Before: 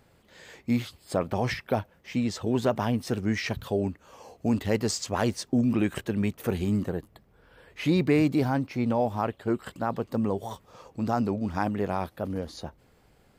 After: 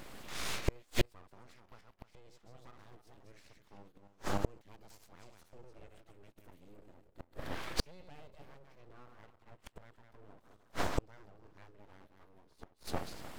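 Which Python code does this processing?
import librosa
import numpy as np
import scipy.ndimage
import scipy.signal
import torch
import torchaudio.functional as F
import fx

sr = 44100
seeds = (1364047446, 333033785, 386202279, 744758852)

y = fx.reverse_delay_fb(x, sr, ms=151, feedback_pct=41, wet_db=-5.0)
y = fx.gate_flip(y, sr, shuts_db=-27.0, range_db=-42)
y = np.abs(y)
y = y * librosa.db_to_amplitude(13.0)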